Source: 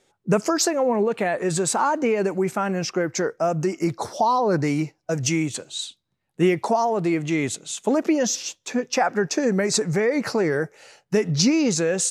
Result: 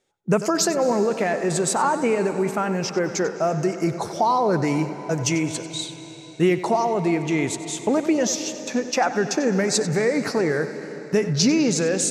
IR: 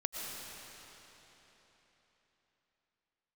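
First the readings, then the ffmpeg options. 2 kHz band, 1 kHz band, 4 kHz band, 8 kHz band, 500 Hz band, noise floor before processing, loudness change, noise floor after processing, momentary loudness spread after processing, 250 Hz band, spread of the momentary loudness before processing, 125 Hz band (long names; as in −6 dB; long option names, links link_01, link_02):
+0.5 dB, +0.5 dB, +0.5 dB, 0.0 dB, +0.5 dB, −73 dBFS, +0.5 dB, −39 dBFS, 7 LU, +0.5 dB, 7 LU, +0.5 dB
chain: -filter_complex "[0:a]agate=range=-9dB:threshold=-38dB:ratio=16:detection=peak,asplit=2[link_01][link_02];[1:a]atrim=start_sample=2205,highshelf=frequency=8400:gain=-5,adelay=94[link_03];[link_02][link_03]afir=irnorm=-1:irlink=0,volume=-12dB[link_04];[link_01][link_04]amix=inputs=2:normalize=0"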